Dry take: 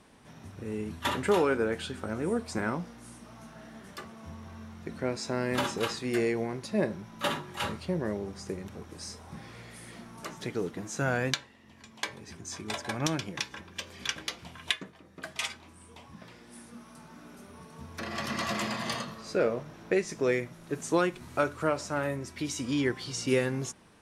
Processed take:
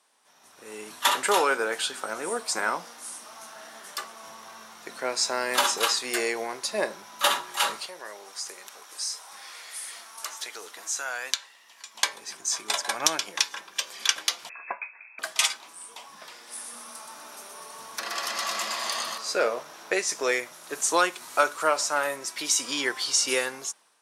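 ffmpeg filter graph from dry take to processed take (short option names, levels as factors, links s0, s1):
-filter_complex "[0:a]asettb=1/sr,asplit=3[s0][s1][s2];[s0]atrim=end=7.864[s3];[s1]atrim=start=7.86:end=11.95,asetpts=PTS-STARTPTS,afade=t=in:d=0.004:c=qsin,afade=t=out:st=4.086:d=0.004:c=qsin,highpass=f=1100:p=1,acompressor=threshold=0.00631:ratio=1.5:attack=3.2:release=140:knee=1:detection=peak[s4];[s2]atrim=start=11.946[s5];[s3][s4]acrossfade=d=0.004:c1=hsin:c2=qsin[s6];[s6][s5]acrossfade=d=0.004:c1=qsin:c2=hsin,asettb=1/sr,asplit=3[s7][s8][s9];[s7]atrim=end=14.494[s10];[s8]atrim=start=14.49:end=15.19,asetpts=PTS-STARTPTS,afade=t=in:d=0.004:c=qsin,afade=t=out:st=0.696:d=0.004:c=qsin,equalizer=f=1700:t=o:w=1.6:g=-4,lowpass=f=2300:t=q:w=0.5098,lowpass=f=2300:t=q:w=0.6013,lowpass=f=2300:t=q:w=0.9,lowpass=f=2300:t=q:w=2.563,afreqshift=-2700[s11];[s9]atrim=start=15.186[s12];[s10][s11]acrossfade=d=0.004:c1=hsin:c2=qsin[s13];[s13][s12]acrossfade=d=0.004:c1=qsin:c2=hsin,asettb=1/sr,asplit=3[s14][s15][s16];[s14]atrim=end=16.354[s17];[s15]atrim=start=16.35:end=19.18,asetpts=PTS-STARTPTS,afade=t=in:d=0.004:c=qsin,afade=t=out:st=2.826:d=0.004:c=qsin,acompressor=threshold=0.0178:ratio=6:attack=3.2:release=140:knee=1:detection=peak,aecho=1:1:124|248|372|496|620|744|868:0.562|0.304|0.164|0.0885|0.0478|0.0258|0.0139,atrim=end_sample=124803[s18];[s16]atrim=start=19.176[s19];[s17][s18]acrossfade=d=0.004:c1=hsin:c2=qsin[s20];[s20][s19]acrossfade=d=0.004:c1=qsin:c2=hsin,highpass=1100,equalizer=f=2100:t=o:w=1.8:g=-9,dynaudnorm=f=140:g=9:m=5.62,volume=1.12"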